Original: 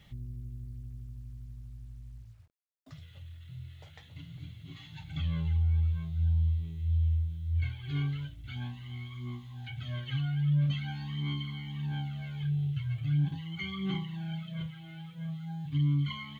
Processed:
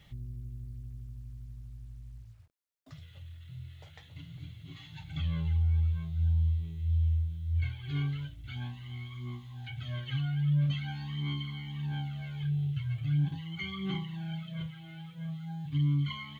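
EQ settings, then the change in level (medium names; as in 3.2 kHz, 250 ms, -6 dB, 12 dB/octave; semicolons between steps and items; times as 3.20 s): peaking EQ 220 Hz -4 dB 0.37 oct; 0.0 dB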